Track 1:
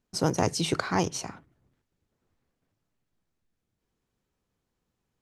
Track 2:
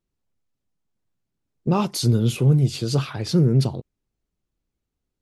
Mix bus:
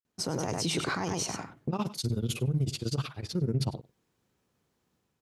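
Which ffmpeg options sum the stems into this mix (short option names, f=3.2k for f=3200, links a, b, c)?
-filter_complex "[0:a]highpass=78,dynaudnorm=f=150:g=5:m=5dB,adelay=50,volume=0.5dB,asplit=2[a][b];[b]volume=-8dB[c];[1:a]agate=range=-33dB:threshold=-23dB:ratio=3:detection=peak,tremolo=f=16:d=0.96,volume=0dB,asplit=2[d][e];[e]volume=-22.5dB[f];[c][f]amix=inputs=2:normalize=0,aecho=0:1:99:1[g];[a][d][g]amix=inputs=3:normalize=0,alimiter=limit=-21dB:level=0:latency=1:release=49"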